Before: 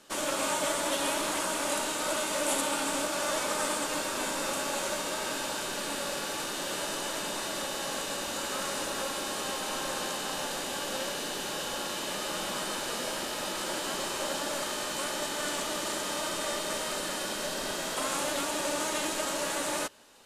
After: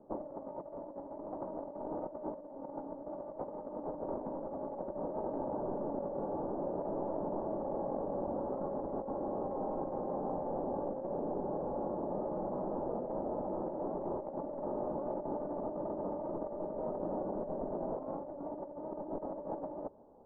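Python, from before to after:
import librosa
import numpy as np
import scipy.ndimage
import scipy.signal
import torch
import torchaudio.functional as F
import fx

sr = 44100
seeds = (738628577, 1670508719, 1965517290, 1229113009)

y = scipy.signal.sosfilt(scipy.signal.butter(6, 830.0, 'lowpass', fs=sr, output='sos'), x)
y = fx.over_compress(y, sr, threshold_db=-39.0, ratio=-0.5)
y = F.gain(torch.from_numpy(y), 1.0).numpy()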